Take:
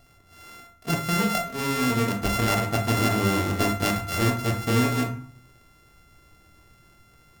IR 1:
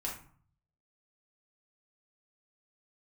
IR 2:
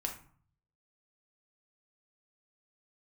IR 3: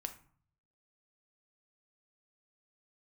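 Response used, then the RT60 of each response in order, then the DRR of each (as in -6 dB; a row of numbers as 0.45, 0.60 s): 2; 0.50, 0.50, 0.50 s; -4.0, 1.5, 6.5 dB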